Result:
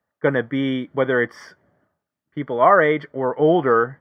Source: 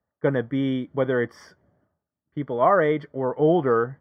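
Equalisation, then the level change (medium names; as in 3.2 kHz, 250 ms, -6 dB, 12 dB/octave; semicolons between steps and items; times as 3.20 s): high-pass 140 Hz 6 dB/octave; peaking EQ 2 kHz +6 dB 1.7 oct; +3.0 dB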